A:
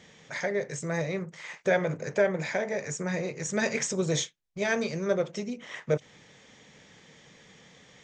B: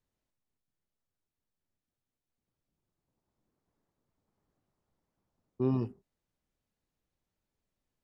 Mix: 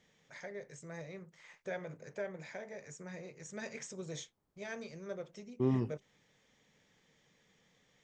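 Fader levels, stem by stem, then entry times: -16.0 dB, -1.5 dB; 0.00 s, 0.00 s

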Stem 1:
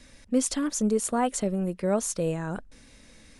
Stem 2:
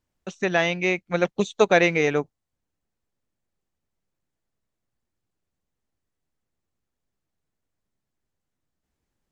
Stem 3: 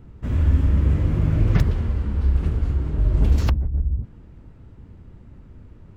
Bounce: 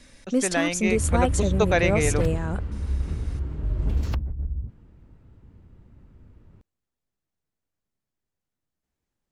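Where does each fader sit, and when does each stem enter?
+1.0 dB, -4.0 dB, -7.0 dB; 0.00 s, 0.00 s, 0.65 s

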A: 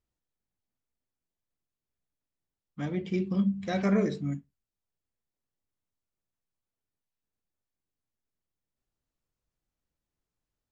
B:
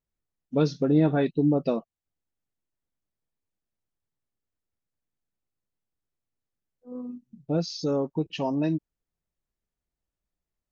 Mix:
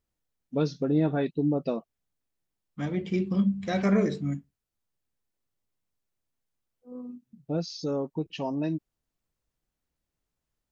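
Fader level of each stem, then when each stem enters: +2.0 dB, -3.5 dB; 0.00 s, 0.00 s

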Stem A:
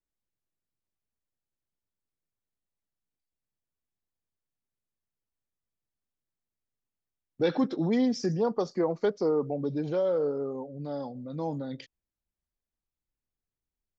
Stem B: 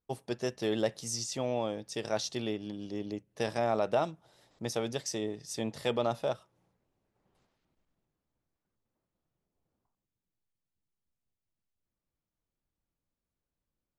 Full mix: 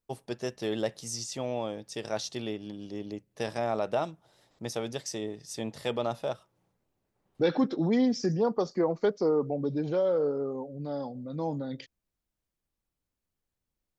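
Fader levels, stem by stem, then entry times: +0.5 dB, -0.5 dB; 0.00 s, 0.00 s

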